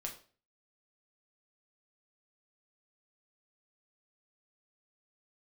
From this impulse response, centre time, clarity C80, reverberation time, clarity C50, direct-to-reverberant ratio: 17 ms, 15.0 dB, 0.40 s, 10.5 dB, 0.5 dB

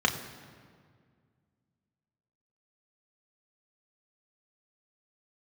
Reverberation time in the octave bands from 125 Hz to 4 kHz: 2.7, 2.5, 2.1, 1.8, 1.6, 1.3 seconds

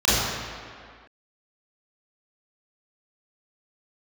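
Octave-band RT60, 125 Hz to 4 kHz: 1.6, 1.9, 1.9, 2.2, 2.1, 1.5 seconds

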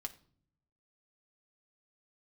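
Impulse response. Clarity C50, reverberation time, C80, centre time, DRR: 16.5 dB, non-exponential decay, 20.5 dB, 5 ms, 4.0 dB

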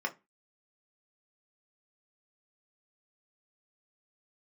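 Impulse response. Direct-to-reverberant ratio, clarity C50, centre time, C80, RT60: 2.0 dB, 19.0 dB, 7 ms, 27.5 dB, 0.25 s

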